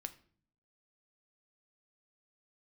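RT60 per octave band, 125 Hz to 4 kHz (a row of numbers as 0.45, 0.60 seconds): 0.90, 0.85, 0.55, 0.45, 0.45, 0.40 seconds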